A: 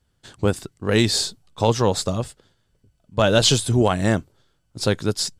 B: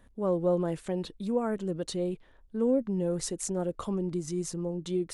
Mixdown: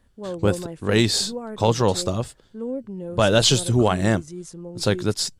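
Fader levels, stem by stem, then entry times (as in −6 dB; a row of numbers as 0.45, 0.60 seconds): −0.5, −3.5 decibels; 0.00, 0.00 seconds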